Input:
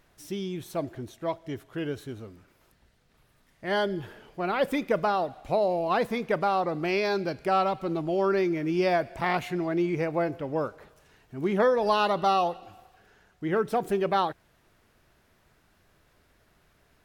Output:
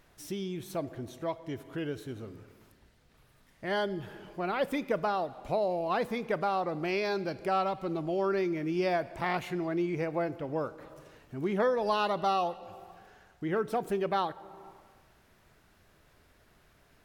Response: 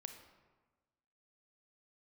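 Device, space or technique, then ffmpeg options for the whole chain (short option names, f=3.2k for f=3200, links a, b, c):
compressed reverb return: -filter_complex "[0:a]asplit=2[a][b];[1:a]atrim=start_sample=2205[c];[b][c]afir=irnorm=-1:irlink=0,acompressor=threshold=-44dB:ratio=6,volume=6.5dB[d];[a][d]amix=inputs=2:normalize=0,volume=-6dB"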